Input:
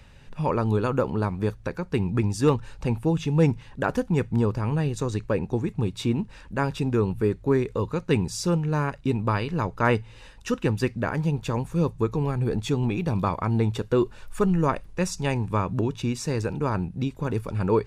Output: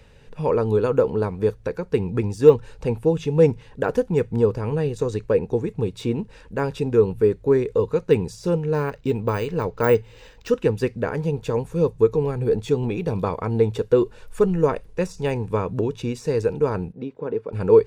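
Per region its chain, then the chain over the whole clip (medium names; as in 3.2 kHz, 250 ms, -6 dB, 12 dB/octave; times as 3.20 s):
8.74–10.48 s: treble shelf 3.8 kHz +8.5 dB + decimation joined by straight lines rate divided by 4×
16.92–17.53 s: high-pass 230 Hz + tape spacing loss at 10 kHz 32 dB
whole clip: de-esser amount 80%; peaking EQ 460 Hz +13 dB 0.36 oct; band-stop 1.2 kHz, Q 19; trim -1 dB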